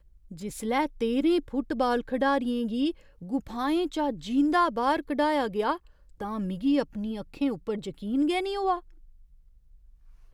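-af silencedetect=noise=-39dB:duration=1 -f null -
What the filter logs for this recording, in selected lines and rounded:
silence_start: 8.79
silence_end: 10.33 | silence_duration: 1.54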